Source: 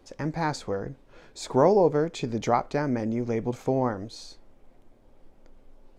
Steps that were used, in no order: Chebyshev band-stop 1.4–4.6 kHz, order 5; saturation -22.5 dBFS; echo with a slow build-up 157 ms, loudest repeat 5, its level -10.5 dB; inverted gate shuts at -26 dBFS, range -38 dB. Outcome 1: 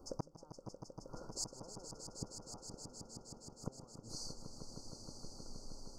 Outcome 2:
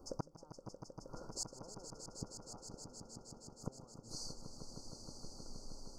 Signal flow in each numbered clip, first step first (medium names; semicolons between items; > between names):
Chebyshev band-stop > inverted gate > echo with a slow build-up > saturation; inverted gate > Chebyshev band-stop > saturation > echo with a slow build-up